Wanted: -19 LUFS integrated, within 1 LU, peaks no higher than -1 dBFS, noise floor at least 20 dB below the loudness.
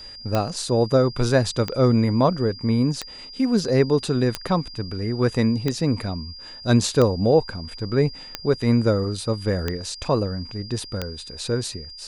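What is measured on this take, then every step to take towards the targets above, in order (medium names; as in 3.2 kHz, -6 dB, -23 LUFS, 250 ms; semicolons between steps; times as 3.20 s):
clicks found 9; steady tone 4.8 kHz; tone level -38 dBFS; loudness -22.5 LUFS; peak level -5.5 dBFS; loudness target -19.0 LUFS
-> de-click; band-stop 4.8 kHz, Q 30; trim +3.5 dB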